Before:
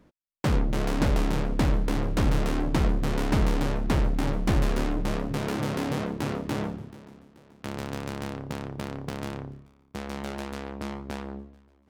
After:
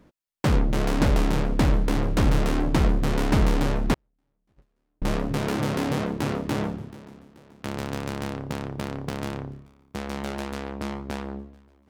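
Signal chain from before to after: 3.94–5.02 gate -15 dBFS, range -52 dB; gain +3 dB

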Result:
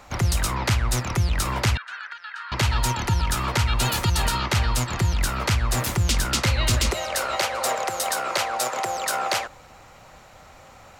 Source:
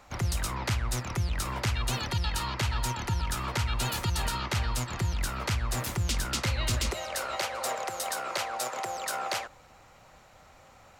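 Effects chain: 1.77–2.52 ladder band-pass 1600 Hz, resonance 80%; gain +7.5 dB

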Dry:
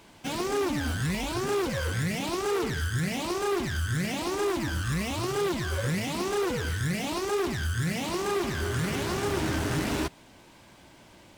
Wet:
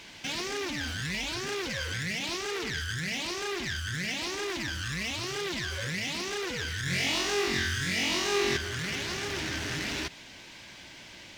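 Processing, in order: limiter -30.5 dBFS, peak gain reduction 9.5 dB; band shelf 3300 Hz +11 dB 2.3 oct; 6.84–8.57 flutter echo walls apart 3.8 m, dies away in 0.74 s

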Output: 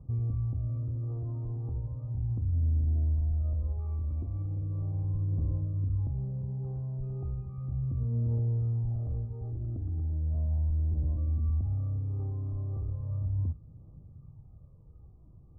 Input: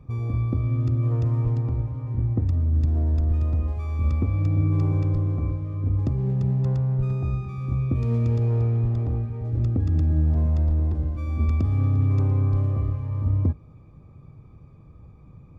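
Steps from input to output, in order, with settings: limiter -21 dBFS, peak gain reduction 8.5 dB; phaser 0.36 Hz, delay 3.1 ms, feedback 42%; ladder low-pass 910 Hz, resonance 20%; bell 390 Hz -7.5 dB 2.2 oct

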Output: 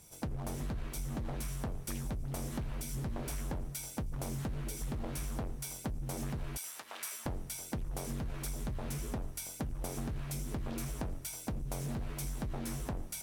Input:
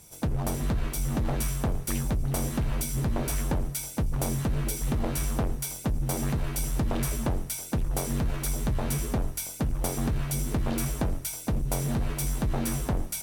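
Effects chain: 6.57–7.26 HPF 1200 Hz 12 dB/oct; compressor 4:1, threshold -30 dBFS, peak gain reduction 7 dB; Doppler distortion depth 0.21 ms; gain -5 dB

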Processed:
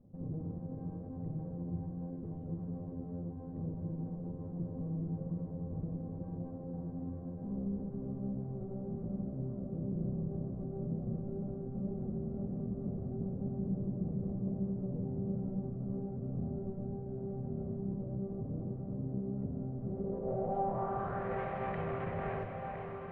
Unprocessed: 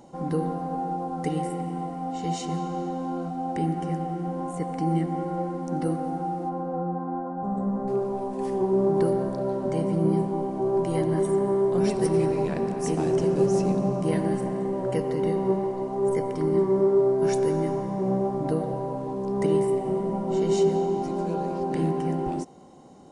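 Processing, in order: minimum comb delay 1.6 ms; LPF 3600 Hz 24 dB/oct; bell 110 Hz +14.5 dB 0.32 oct; limiter -23.5 dBFS, peak gain reduction 10 dB; on a send: diffused feedback echo 0.498 s, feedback 41%, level -6 dB; on the sum: low-pass sweep 260 Hz -> 2200 Hz, 19.8–21.43; thinning echo 1.013 s, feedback 78%, high-pass 150 Hz, level -10 dB; gain -8.5 dB

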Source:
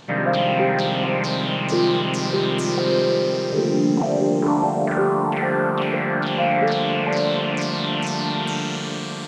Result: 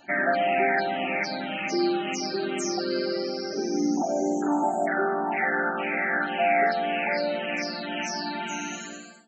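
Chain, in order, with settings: ending faded out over 0.51 s; tilt +2.5 dB/oct; de-hum 222.2 Hz, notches 16; loudest bins only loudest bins 64; fixed phaser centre 710 Hz, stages 8

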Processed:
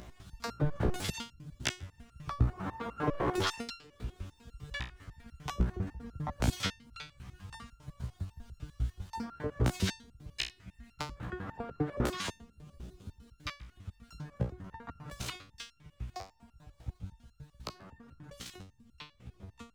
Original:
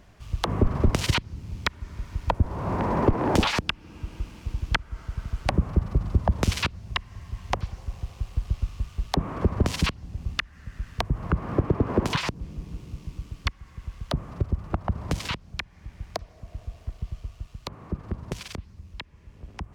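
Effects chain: repeated pitch sweeps +7.5 st, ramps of 0.168 s; upward compressor, threshold -37 dBFS; stepped resonator 10 Hz 61–1400 Hz; gain +3.5 dB

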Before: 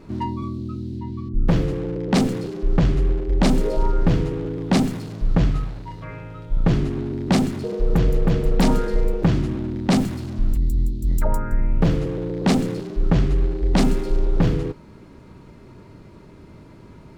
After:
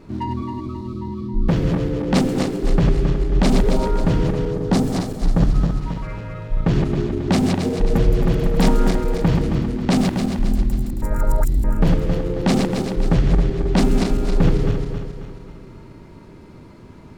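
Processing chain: regenerating reverse delay 0.135 s, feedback 67%, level -4 dB; 4.51–5.81 bell 2500 Hz -6.5 dB 1.1 oct; 11.02–11.64 reverse

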